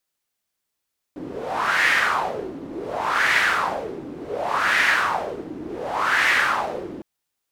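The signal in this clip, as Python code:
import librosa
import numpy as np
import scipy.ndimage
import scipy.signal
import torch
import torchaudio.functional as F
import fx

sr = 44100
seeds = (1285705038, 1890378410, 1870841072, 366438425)

y = fx.wind(sr, seeds[0], length_s=5.86, low_hz=290.0, high_hz=1900.0, q=3.8, gusts=4, swing_db=15.5)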